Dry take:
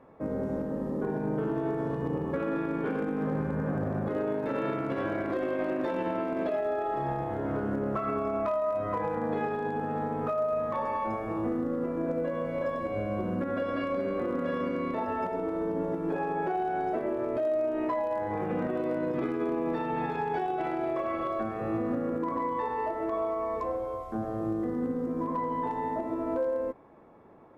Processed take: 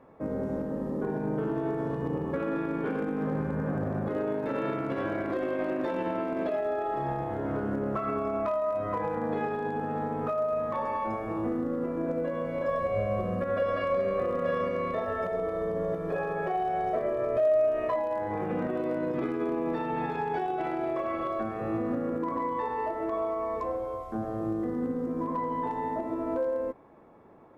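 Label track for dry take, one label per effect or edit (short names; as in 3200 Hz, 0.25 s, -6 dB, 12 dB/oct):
12.680000	17.960000	comb 1.7 ms, depth 77%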